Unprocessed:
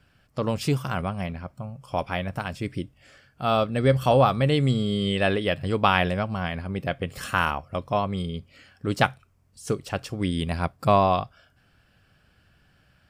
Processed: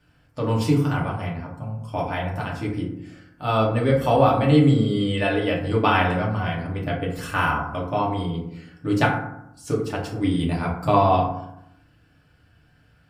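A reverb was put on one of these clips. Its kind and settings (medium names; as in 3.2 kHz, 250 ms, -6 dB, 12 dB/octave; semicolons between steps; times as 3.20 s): FDN reverb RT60 0.78 s, low-frequency decay 1.35×, high-frequency decay 0.4×, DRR -4 dB; trim -4 dB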